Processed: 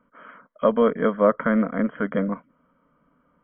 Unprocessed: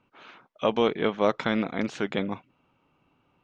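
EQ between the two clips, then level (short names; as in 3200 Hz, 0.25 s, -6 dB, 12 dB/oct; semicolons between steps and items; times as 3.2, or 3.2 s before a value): dynamic EQ 2600 Hz, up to -6 dB, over -46 dBFS, Q 1.9; brick-wall FIR low-pass 3300 Hz; fixed phaser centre 540 Hz, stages 8; +7.0 dB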